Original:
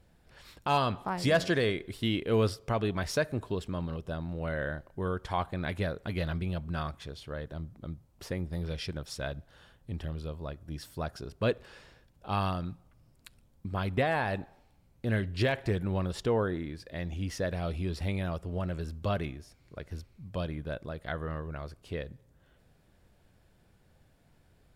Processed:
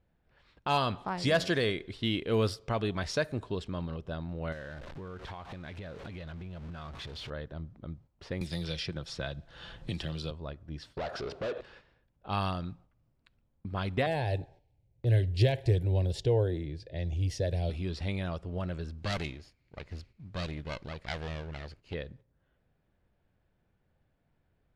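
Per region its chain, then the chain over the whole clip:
4.52–7.30 s: jump at every zero crossing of -38.5 dBFS + treble shelf 12 kHz +9.5 dB + compression 16:1, threshold -37 dBFS
8.41–10.31 s: treble shelf 4.3 kHz +5.5 dB + comb 5.9 ms, depth 31% + three bands compressed up and down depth 100%
10.97–11.61 s: peaking EQ 560 Hz +8 dB 1.1 oct + compression 2.5:1, threshold -39 dBFS + overdrive pedal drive 27 dB, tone 2.4 kHz, clips at -26 dBFS
14.06–17.70 s: peaking EQ 130 Hz +13 dB 1.9 oct + static phaser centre 510 Hz, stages 4
18.98–21.94 s: comb filter that takes the minimum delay 0.44 ms + treble shelf 2.4 kHz +8 dB
whole clip: dynamic bell 4 kHz, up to +4 dB, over -54 dBFS, Q 1.2; level-controlled noise filter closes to 2.9 kHz, open at -23.5 dBFS; gate -52 dBFS, range -8 dB; trim -1.5 dB

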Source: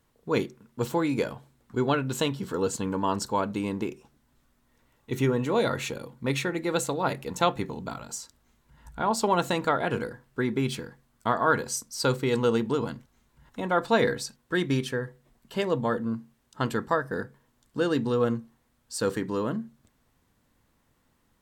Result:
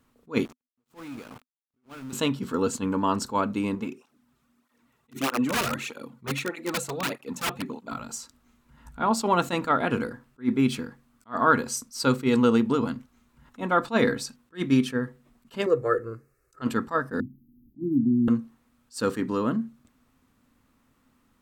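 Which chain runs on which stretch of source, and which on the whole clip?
0.45–2.13 s: compression 12:1, threshold -39 dBFS + small samples zeroed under -44.5 dBFS
3.75–7.92 s: bass shelf 100 Hz -6 dB + integer overflow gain 19 dB + cancelling through-zero flanger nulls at 1.6 Hz, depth 4 ms
15.66–16.62 s: peaking EQ 380 Hz +5.5 dB 0.73 oct + static phaser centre 890 Hz, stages 6 + comb 2.3 ms, depth 40%
17.20–18.28 s: brick-wall FIR band-stop 370–12000 Hz + three bands compressed up and down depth 40%
whole clip: graphic EQ with 31 bands 250 Hz +11 dB, 1.25 kHz +7 dB, 2.5 kHz +4 dB; attacks held to a fixed rise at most 340 dB/s

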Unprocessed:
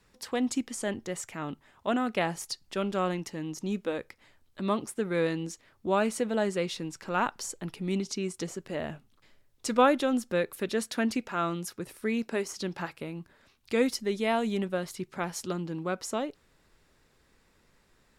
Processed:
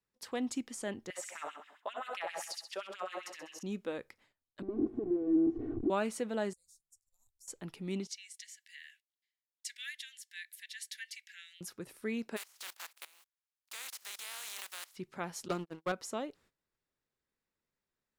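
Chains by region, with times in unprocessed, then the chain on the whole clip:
1.10–3.63 s: feedback delay 65 ms, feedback 49%, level -5 dB + compression 10:1, threshold -29 dBFS + LFO high-pass sine 7.6 Hz 520–2800 Hz
4.62–5.90 s: one-bit comparator + resonant low-pass 310 Hz, resonance Q 3.5 + comb 2.7 ms, depth 86%
6.53–7.48 s: inverse Chebyshev band-stop 170–3100 Hz, stop band 50 dB + compression 2:1, threshold -55 dBFS
8.07–11.61 s: steep high-pass 1.7 kHz 96 dB/octave + band-stop 2.5 kHz, Q 15
12.36–14.95 s: spectral contrast reduction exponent 0.27 + high-pass 900 Hz + level held to a coarse grid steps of 19 dB
15.48–15.92 s: gate -33 dBFS, range -31 dB + bass shelf 230 Hz -10 dB + waveshaping leveller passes 3
whole clip: gate -57 dBFS, range -18 dB; bass shelf 67 Hz -8.5 dB; trim -6.5 dB

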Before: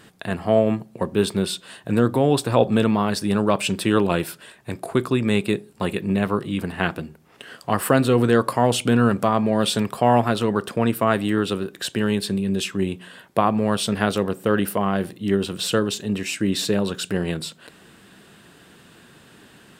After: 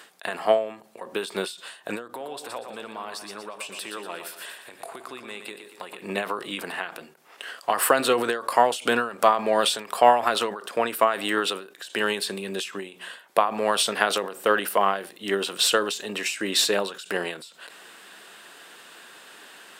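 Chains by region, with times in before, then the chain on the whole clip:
2.08–6.02 s: compression 2.5:1, threshold -39 dBFS + feedback delay 118 ms, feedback 46%, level -8 dB
whole clip: high-pass 610 Hz 12 dB/octave; endings held to a fixed fall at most 120 dB/s; trim +5.5 dB

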